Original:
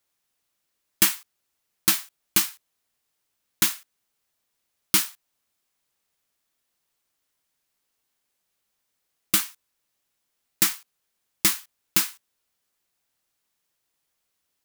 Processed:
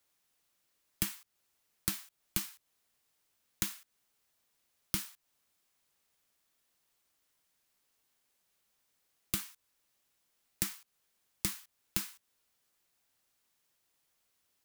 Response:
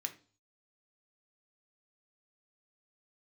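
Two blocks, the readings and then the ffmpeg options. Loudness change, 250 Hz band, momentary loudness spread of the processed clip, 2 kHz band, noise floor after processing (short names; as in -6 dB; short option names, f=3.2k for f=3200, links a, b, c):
-14.0 dB, -9.5 dB, 11 LU, -15.5 dB, -79 dBFS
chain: -filter_complex "[0:a]acrossover=split=160[a][b];[b]acompressor=threshold=-32dB:ratio=10[c];[a][c]amix=inputs=2:normalize=0"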